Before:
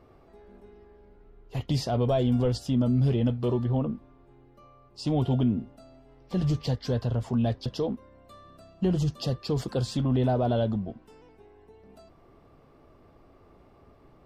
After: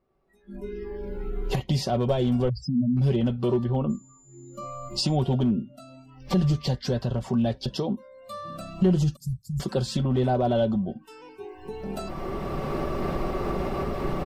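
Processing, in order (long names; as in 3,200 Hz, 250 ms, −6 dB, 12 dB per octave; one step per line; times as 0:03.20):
0:02.49–0:02.97: expanding power law on the bin magnitudes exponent 3.7
camcorder AGC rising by 13 dB per second
noise reduction from a noise print of the clip's start 24 dB
0:09.16–0:09.60: inverse Chebyshev band-stop filter 410–2,900 Hz, stop band 60 dB
in parallel at −1 dB: downward compressor 8 to 1, threshold −37 dBFS, peak gain reduction 16.5 dB
on the sum: hard clipping −16 dBFS, distortion −33 dB
comb filter 5.3 ms, depth 53%
0:03.89–0:05.15: steady tone 7,100 Hz −55 dBFS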